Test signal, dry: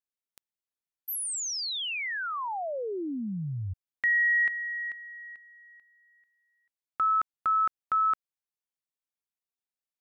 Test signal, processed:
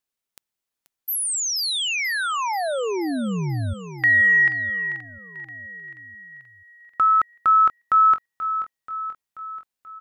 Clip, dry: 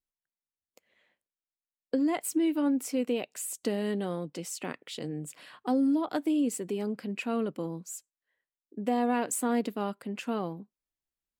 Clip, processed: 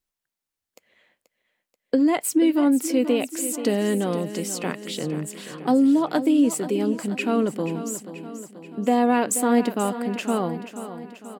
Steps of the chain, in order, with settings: feedback echo 0.483 s, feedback 57%, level -12 dB; gain +8 dB

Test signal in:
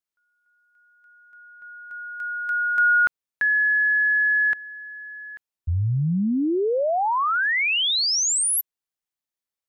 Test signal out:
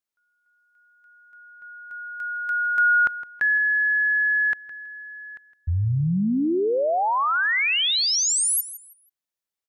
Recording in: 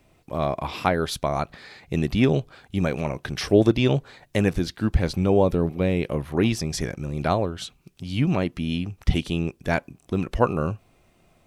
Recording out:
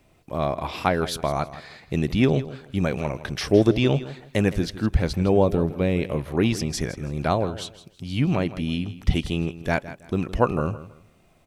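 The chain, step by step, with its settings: feedback echo 0.162 s, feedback 26%, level -15 dB

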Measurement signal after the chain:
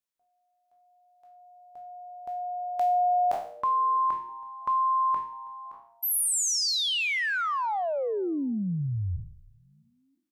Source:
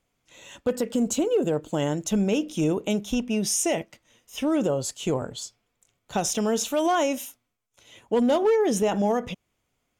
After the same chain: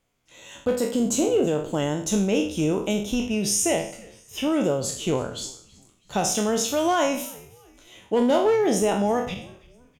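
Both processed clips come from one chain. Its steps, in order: spectral trails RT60 0.51 s; frequency-shifting echo 0.326 s, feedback 40%, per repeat -120 Hz, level -23.5 dB

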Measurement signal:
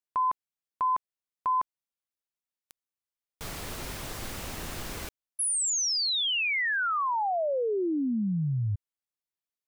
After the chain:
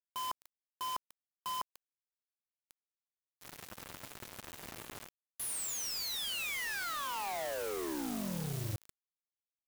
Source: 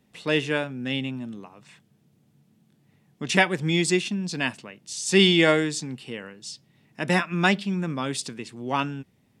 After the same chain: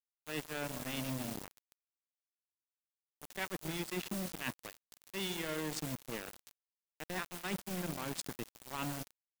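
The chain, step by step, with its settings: Wiener smoothing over 9 samples; HPF 90 Hz 24 dB/oct; reverse; compressor 10:1, threshold -33 dBFS; reverse; added noise white -49 dBFS; on a send: echo with dull and thin repeats by turns 0.143 s, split 1000 Hz, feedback 58%, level -10 dB; on the sum: sample gate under -34 dBFS; gain -2.5 dB

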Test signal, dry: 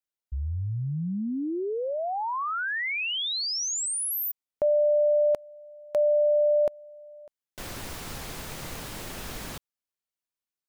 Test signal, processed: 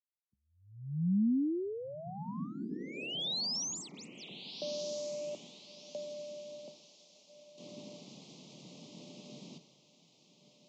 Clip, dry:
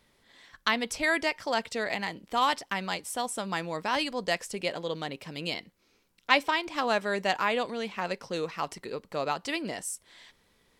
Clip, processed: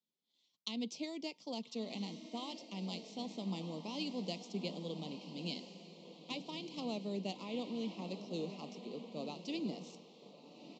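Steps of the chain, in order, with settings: median filter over 5 samples; compressor, threshold -25 dBFS; on a send: diffused feedback echo 1.306 s, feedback 51%, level -7.5 dB; on the sum: dynamic EQ 230 Hz, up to +8 dB, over -47 dBFS, Q 0.73; Butterworth band-stop 1600 Hz, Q 0.84; downsampling 16000 Hz; steep high-pass 160 Hz 36 dB/oct; bell 720 Hz -10 dB 2.5 oct; three-band expander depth 40%; gain -6 dB

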